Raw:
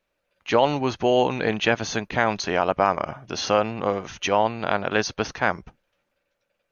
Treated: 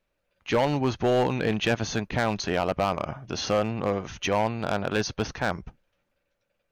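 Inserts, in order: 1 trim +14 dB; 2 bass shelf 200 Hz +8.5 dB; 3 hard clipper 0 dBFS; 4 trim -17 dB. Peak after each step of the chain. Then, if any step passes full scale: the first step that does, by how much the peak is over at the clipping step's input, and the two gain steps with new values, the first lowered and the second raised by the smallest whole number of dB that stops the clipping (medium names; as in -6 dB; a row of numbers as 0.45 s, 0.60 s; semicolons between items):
+9.5 dBFS, +10.0 dBFS, 0.0 dBFS, -17.0 dBFS; step 1, 10.0 dB; step 1 +4 dB, step 4 -7 dB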